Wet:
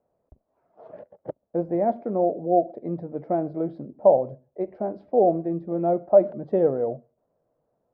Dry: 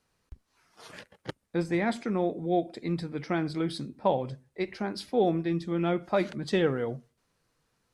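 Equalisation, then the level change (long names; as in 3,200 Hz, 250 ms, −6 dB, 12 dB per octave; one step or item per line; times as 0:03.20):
low-pass with resonance 630 Hz, resonance Q 4.9
low-shelf EQ 79 Hz −11.5 dB
0.0 dB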